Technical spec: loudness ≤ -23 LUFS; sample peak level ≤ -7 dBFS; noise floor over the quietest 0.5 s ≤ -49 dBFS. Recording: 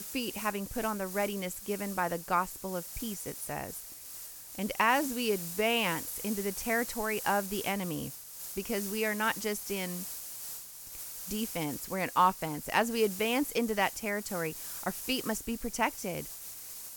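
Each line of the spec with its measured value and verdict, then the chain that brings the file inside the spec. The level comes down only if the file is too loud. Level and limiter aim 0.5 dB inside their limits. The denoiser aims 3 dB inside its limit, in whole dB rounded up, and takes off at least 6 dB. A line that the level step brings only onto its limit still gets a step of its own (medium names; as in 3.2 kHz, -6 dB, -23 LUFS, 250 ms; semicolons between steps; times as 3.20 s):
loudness -32.5 LUFS: pass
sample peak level -12.0 dBFS: pass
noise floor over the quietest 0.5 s -46 dBFS: fail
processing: noise reduction 6 dB, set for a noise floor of -46 dBFS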